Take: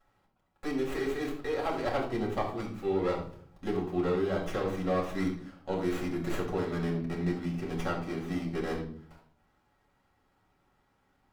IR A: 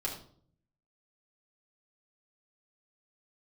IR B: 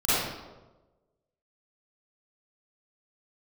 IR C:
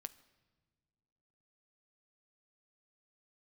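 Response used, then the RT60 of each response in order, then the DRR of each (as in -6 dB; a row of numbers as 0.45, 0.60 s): A; 0.55 s, 1.2 s, not exponential; -3.0, -15.0, 12.5 dB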